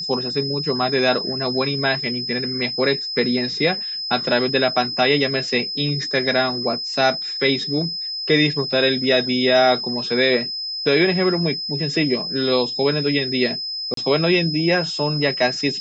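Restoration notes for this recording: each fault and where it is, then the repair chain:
whistle 5,100 Hz −25 dBFS
0:13.94–0:13.97: drop-out 33 ms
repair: notch filter 5,100 Hz, Q 30
repair the gap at 0:13.94, 33 ms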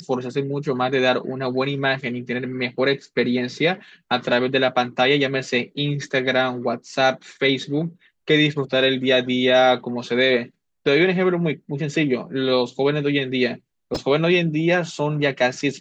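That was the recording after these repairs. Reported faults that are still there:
whistle 5,100 Hz

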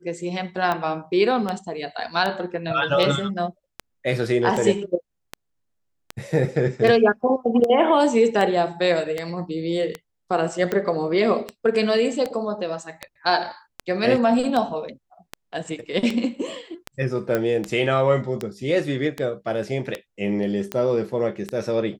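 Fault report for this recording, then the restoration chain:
scratch tick 78 rpm −12 dBFS
0:17.35: click −10 dBFS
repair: click removal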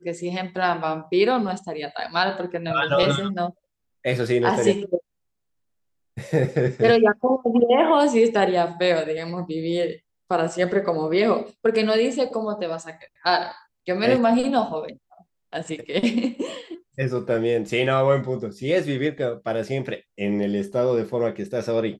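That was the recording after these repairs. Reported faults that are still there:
none of them is left

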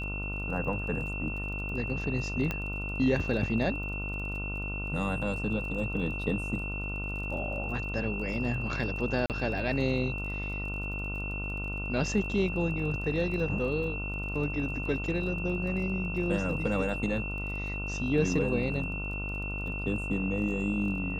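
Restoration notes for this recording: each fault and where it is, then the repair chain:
mains buzz 50 Hz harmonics 29 −36 dBFS
surface crackle 26 per second −40 dBFS
whistle 2,700 Hz −36 dBFS
0:02.51: click −17 dBFS
0:09.26–0:09.30: drop-out 38 ms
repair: click removal
hum removal 50 Hz, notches 29
notch filter 2,700 Hz, Q 30
repair the gap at 0:09.26, 38 ms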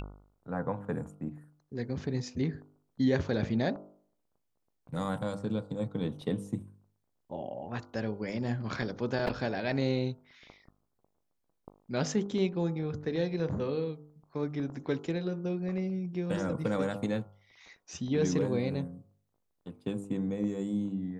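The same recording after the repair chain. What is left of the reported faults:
none of them is left

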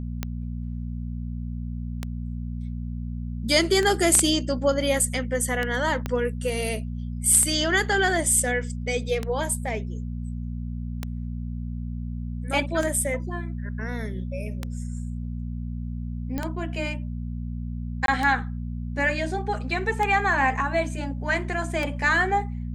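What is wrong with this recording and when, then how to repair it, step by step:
mains hum 60 Hz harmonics 4 −31 dBFS
scratch tick 33 1/3 rpm −13 dBFS
0:06.06: click −14 dBFS
0:16.38: click −16 dBFS
0:18.06–0:18.08: drop-out 22 ms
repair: click removal
hum removal 60 Hz, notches 4
repair the gap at 0:18.06, 22 ms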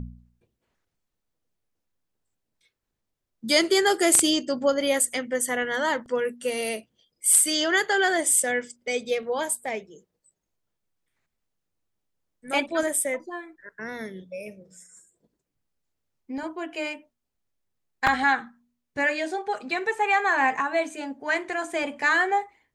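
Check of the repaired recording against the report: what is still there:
0:06.06: click

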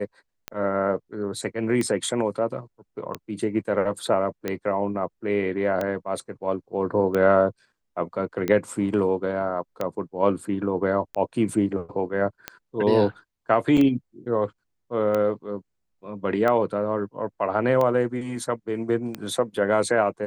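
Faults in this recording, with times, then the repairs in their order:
scratch tick 45 rpm −13 dBFS
0:13.77–0:13.78: drop-out 5.6 ms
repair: click removal
repair the gap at 0:13.77, 5.6 ms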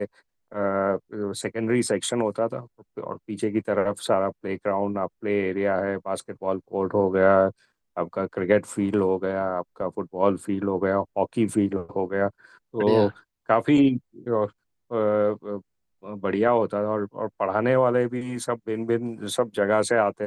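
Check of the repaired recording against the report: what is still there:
none of them is left

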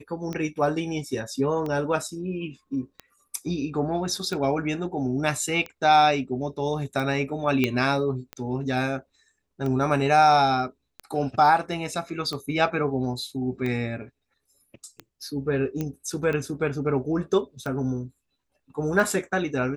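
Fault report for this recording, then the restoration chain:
scratch tick 45 rpm −19 dBFS
0:07.64: click −10 dBFS
0:15.81: click −16 dBFS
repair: click removal

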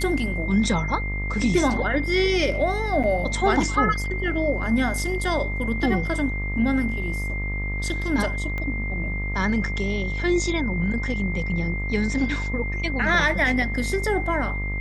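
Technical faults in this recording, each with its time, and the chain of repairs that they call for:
mains buzz 50 Hz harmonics 26 −28 dBFS
whistle 2,100 Hz −30 dBFS
0:03.03–0:03.04: drop-out 7 ms
0:08.58: click −18 dBFS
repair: click removal
notch filter 2,100 Hz, Q 30
hum removal 50 Hz, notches 26
repair the gap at 0:03.03, 7 ms

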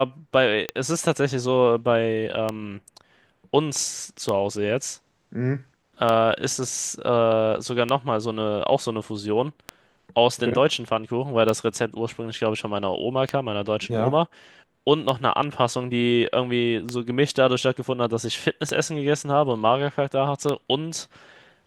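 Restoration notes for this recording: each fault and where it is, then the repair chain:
scratch tick 33 1/3 rpm −10 dBFS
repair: click removal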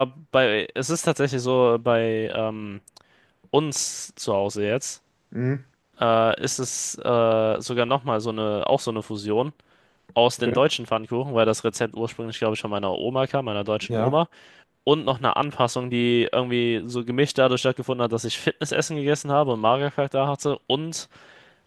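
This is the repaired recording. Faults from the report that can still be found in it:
none of them is left

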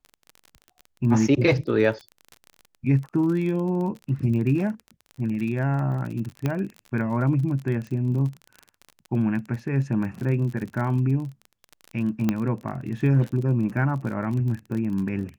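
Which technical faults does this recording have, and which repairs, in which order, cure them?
surface crackle 31 per second −31 dBFS
0:06.46: click −13 dBFS
0:12.29: click −10 dBFS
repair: click removal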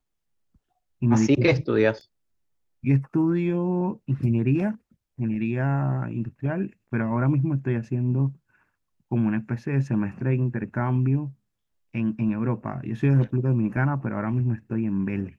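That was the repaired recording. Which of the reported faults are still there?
none of them is left

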